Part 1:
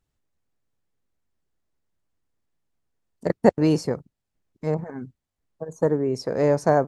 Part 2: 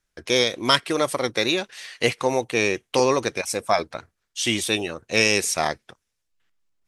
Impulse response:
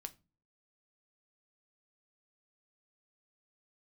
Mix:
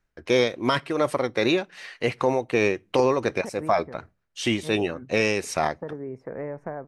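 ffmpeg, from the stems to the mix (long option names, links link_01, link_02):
-filter_complex "[0:a]highshelf=frequency=3000:width_type=q:width=3:gain=-12.5,acompressor=threshold=-23dB:ratio=5,volume=-7dB[link_01];[1:a]equalizer=frequency=10000:width=0.37:gain=-4.5,bandreject=frequency=3400:width=17,tremolo=f=2.7:d=0.55,volume=3dB,asplit=3[link_02][link_03][link_04];[link_03]volume=-9.5dB[link_05];[link_04]apad=whole_len=302996[link_06];[link_01][link_06]sidechaincompress=threshold=-26dB:ratio=8:attack=16:release=268[link_07];[2:a]atrim=start_sample=2205[link_08];[link_05][link_08]afir=irnorm=-1:irlink=0[link_09];[link_07][link_02][link_09]amix=inputs=3:normalize=0,highshelf=frequency=3200:gain=-11,alimiter=limit=-10dB:level=0:latency=1:release=16"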